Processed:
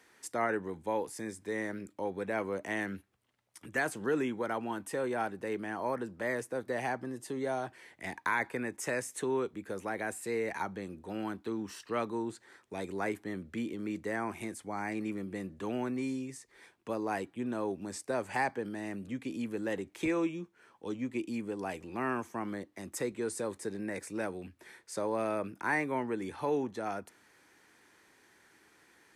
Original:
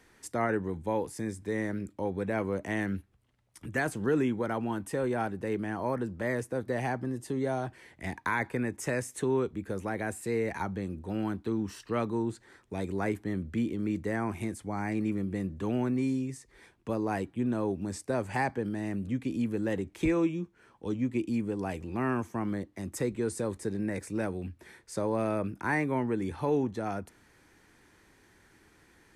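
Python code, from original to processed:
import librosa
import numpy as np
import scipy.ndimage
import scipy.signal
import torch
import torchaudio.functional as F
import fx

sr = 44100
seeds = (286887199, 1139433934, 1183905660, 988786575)

y = fx.highpass(x, sr, hz=430.0, slope=6)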